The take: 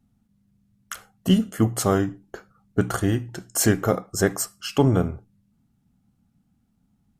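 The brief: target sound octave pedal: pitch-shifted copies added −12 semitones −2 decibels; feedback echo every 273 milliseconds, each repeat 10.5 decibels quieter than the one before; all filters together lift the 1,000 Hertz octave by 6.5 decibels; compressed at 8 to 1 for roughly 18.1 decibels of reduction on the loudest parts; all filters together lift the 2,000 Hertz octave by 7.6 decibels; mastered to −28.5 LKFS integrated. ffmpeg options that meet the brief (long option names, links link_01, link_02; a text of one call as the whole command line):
ffmpeg -i in.wav -filter_complex "[0:a]equalizer=frequency=1000:width_type=o:gain=6.5,equalizer=frequency=2000:width_type=o:gain=7.5,acompressor=threshold=-32dB:ratio=8,aecho=1:1:273|546|819:0.299|0.0896|0.0269,asplit=2[link_01][link_02];[link_02]asetrate=22050,aresample=44100,atempo=2,volume=-2dB[link_03];[link_01][link_03]amix=inputs=2:normalize=0,volume=6.5dB" out.wav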